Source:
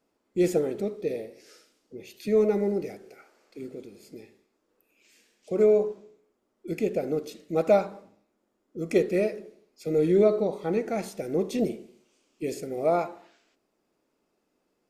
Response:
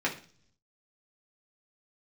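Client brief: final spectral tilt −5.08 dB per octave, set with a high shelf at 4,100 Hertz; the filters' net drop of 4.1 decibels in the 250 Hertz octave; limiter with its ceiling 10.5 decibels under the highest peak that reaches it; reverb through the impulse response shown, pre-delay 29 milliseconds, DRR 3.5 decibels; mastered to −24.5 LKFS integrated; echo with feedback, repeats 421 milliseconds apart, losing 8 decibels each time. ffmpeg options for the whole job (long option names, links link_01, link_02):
-filter_complex "[0:a]equalizer=frequency=250:width_type=o:gain=-6.5,highshelf=frequency=4100:gain=8,alimiter=limit=-20.5dB:level=0:latency=1,aecho=1:1:421|842|1263|1684|2105:0.398|0.159|0.0637|0.0255|0.0102,asplit=2[link_01][link_02];[1:a]atrim=start_sample=2205,adelay=29[link_03];[link_02][link_03]afir=irnorm=-1:irlink=0,volume=-13dB[link_04];[link_01][link_04]amix=inputs=2:normalize=0,volume=7dB"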